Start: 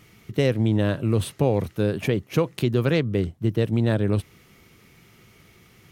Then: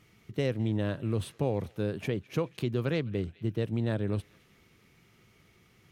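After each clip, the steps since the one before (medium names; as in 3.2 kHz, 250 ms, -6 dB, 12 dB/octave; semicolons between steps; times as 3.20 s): treble shelf 11 kHz -7 dB; band-passed feedback delay 210 ms, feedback 64%, band-pass 2.9 kHz, level -20 dB; trim -8.5 dB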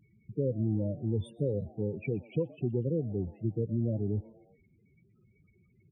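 loudest bins only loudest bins 8; frequency-shifting echo 120 ms, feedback 54%, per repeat +120 Hz, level -24 dB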